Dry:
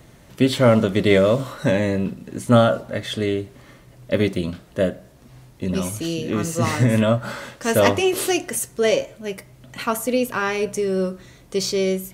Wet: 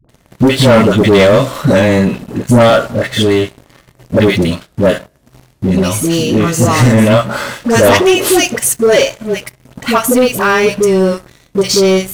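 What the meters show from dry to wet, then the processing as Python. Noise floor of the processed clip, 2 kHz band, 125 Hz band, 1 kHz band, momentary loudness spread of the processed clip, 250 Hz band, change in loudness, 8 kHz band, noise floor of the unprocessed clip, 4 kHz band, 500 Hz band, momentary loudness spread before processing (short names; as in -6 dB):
-52 dBFS, +11.0 dB, +9.5 dB, +10.5 dB, 11 LU, +10.0 dB, +10.0 dB, +11.5 dB, -49 dBFS, +11.0 dB, +10.0 dB, 12 LU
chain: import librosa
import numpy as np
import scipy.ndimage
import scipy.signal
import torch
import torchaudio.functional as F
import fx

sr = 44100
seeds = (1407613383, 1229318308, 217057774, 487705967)

y = fx.dispersion(x, sr, late='highs', ms=92.0, hz=580.0)
y = fx.leveller(y, sr, passes=3)
y = y * 10.0 ** (1.5 / 20.0)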